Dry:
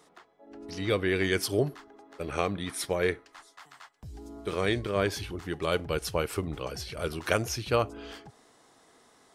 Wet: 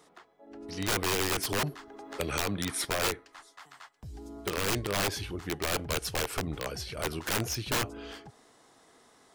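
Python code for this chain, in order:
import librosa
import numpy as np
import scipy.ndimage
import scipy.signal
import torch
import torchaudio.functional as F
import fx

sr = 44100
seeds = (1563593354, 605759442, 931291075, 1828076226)

y = (np.mod(10.0 ** (22.5 / 20.0) * x + 1.0, 2.0) - 1.0) / 10.0 ** (22.5 / 20.0)
y = fx.band_squash(y, sr, depth_pct=70, at=(1.18, 2.85))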